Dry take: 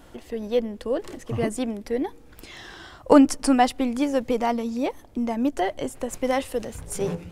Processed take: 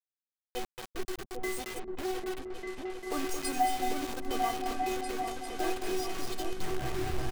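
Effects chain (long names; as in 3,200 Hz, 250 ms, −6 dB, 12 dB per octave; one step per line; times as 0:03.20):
turntable brake at the end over 1.91 s
high-shelf EQ 2,800 Hz +6.5 dB
stiff-string resonator 370 Hz, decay 0.4 s, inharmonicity 0.008
noise gate −46 dBFS, range −16 dB
high-shelf EQ 6,100 Hz −11.5 dB
in parallel at +2 dB: compressor whose output falls as the input rises −43 dBFS, ratio −0.5
on the sum: single-tap delay 221 ms −8.5 dB
bit reduction 7 bits
on a send: echo whose low-pass opens from repeat to repeat 398 ms, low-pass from 200 Hz, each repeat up 2 octaves, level 0 dB
on the sum: level +3 dB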